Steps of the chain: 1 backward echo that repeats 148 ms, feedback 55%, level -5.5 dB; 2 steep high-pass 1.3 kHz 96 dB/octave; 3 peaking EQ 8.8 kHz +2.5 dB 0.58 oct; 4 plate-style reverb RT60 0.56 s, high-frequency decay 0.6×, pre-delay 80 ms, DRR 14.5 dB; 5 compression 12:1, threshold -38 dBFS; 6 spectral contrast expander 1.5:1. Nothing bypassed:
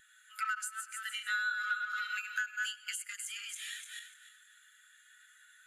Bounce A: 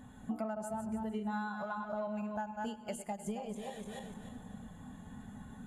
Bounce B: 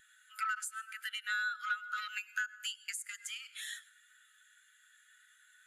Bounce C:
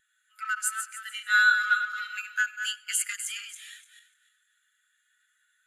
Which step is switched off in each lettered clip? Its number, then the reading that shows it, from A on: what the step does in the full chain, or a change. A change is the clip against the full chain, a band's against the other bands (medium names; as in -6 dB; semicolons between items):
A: 2, 1 kHz band +15.5 dB; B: 1, 1 kHz band +2.0 dB; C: 5, mean gain reduction 6.0 dB